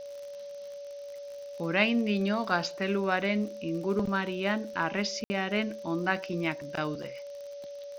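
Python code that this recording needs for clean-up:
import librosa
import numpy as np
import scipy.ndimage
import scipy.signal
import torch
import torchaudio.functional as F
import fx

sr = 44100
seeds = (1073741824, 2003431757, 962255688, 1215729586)

y = fx.fix_declick_ar(x, sr, threshold=6.5)
y = fx.notch(y, sr, hz=570.0, q=30.0)
y = fx.fix_ambience(y, sr, seeds[0], print_start_s=0.58, print_end_s=1.08, start_s=5.24, end_s=5.3)
y = fx.noise_reduce(y, sr, print_start_s=0.58, print_end_s=1.08, reduce_db=30.0)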